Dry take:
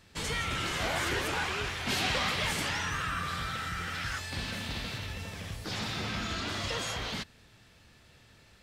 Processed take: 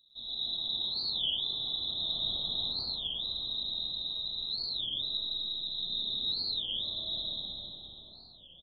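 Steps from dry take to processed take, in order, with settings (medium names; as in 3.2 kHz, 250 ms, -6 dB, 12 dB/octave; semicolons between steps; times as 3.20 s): inverse Chebyshev band-stop 1–2.2 kHz, stop band 60 dB; on a send: frequency-shifting echo 225 ms, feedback 51%, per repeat +51 Hz, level -10 dB; on the sum: frequency inversion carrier 3.9 kHz; peaking EQ 460 Hz -5 dB 0.82 oct; algorithmic reverb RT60 4.7 s, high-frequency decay 0.55×, pre-delay 60 ms, DRR -8.5 dB; warped record 33 1/3 rpm, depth 250 cents; trim -4.5 dB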